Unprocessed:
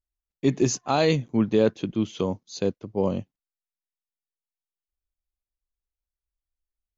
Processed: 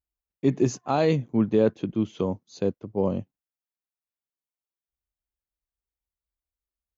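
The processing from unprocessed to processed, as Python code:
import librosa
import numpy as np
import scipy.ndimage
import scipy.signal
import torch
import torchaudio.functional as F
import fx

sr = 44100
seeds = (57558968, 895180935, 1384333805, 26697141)

y = scipy.signal.sosfilt(scipy.signal.butter(2, 42.0, 'highpass', fs=sr, output='sos'), x)
y = fx.peak_eq(y, sr, hz=5500.0, db=-9.0, octaves=2.7)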